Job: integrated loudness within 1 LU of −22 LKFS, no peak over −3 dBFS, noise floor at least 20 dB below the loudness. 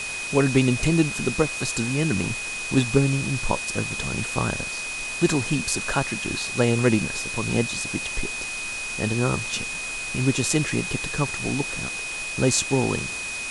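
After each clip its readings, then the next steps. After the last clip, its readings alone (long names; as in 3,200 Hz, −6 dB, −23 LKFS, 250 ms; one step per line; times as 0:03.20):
interfering tone 2,500 Hz; level of the tone −30 dBFS; background noise floor −31 dBFS; target noise floor −44 dBFS; integrated loudness −24.0 LKFS; sample peak −5.0 dBFS; target loudness −22.0 LKFS
→ notch filter 2,500 Hz, Q 30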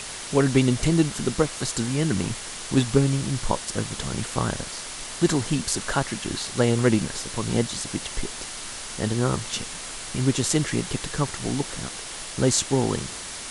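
interfering tone none found; background noise floor −36 dBFS; target noise floor −45 dBFS
→ noise reduction from a noise print 9 dB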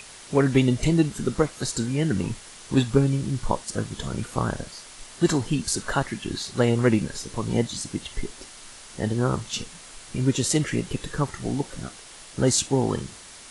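background noise floor −45 dBFS; target noise floor −46 dBFS
→ noise reduction from a noise print 6 dB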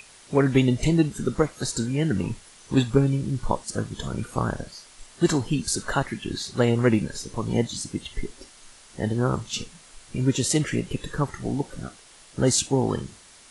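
background noise floor −51 dBFS; integrated loudness −25.5 LKFS; sample peak −5.5 dBFS; target loudness −22.0 LKFS
→ level +3.5 dB
brickwall limiter −3 dBFS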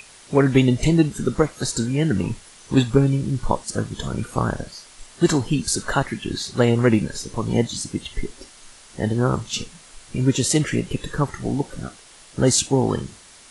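integrated loudness −22.0 LKFS; sample peak −3.0 dBFS; background noise floor −47 dBFS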